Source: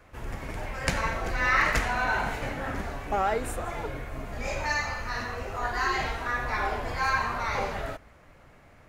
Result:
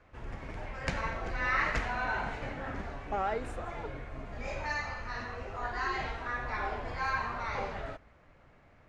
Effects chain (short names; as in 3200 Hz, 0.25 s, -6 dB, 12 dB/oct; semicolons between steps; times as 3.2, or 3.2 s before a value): air absorption 100 m; gain -5.5 dB